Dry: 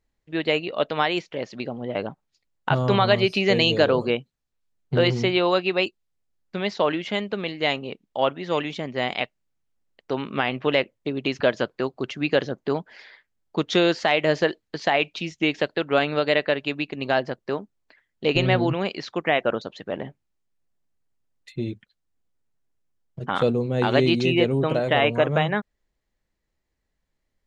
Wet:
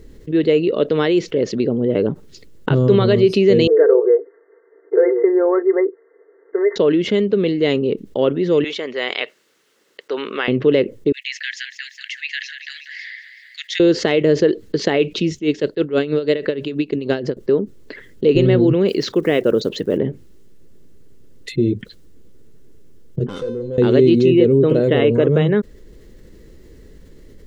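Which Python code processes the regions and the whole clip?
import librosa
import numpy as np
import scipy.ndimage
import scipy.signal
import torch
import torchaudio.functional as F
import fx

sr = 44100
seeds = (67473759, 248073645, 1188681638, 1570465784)

y = fx.chain(x, sr, fx.brickwall_bandpass(low_hz=310.0, high_hz=2100.0),
    fx.comb(ms=4.4, depth=0.72), at=(3.67, 6.76))
y = fx.chain(y, sr, fx.highpass(hz=970.0, slope=12),
    fx.high_shelf(hz=6100.0, db=-10.5), at=(8.64, 10.48))
y = fx.chain(y, sr, fx.steep_highpass(hz=1800.0, slope=72),
    fx.high_shelf_res(hz=2300.0, db=-6.5, q=1.5),
    fx.echo_feedback(ms=190, feedback_pct=51, wet_db=-18), at=(11.12, 13.8))
y = fx.chain(y, sr, fx.high_shelf(hz=4000.0, db=6.5),
    fx.tremolo_db(hz=6.2, depth_db=22), at=(15.34, 17.37))
y = fx.chain(y, sr, fx.block_float(bits=7),
    fx.high_shelf(hz=6400.0, db=5.0), at=(18.88, 19.99))
y = fx.chain(y, sr, fx.bass_treble(bass_db=-3, treble_db=5),
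    fx.tube_stage(drive_db=24.0, bias=0.45),
    fx.comb_fb(f0_hz=510.0, decay_s=0.51, harmonics='all', damping=0.0, mix_pct=90), at=(23.27, 23.78))
y = fx.low_shelf_res(y, sr, hz=570.0, db=9.0, q=3.0)
y = fx.notch(y, sr, hz=2400.0, q=14.0)
y = fx.env_flatten(y, sr, amount_pct=50)
y = F.gain(torch.from_numpy(y), -6.5).numpy()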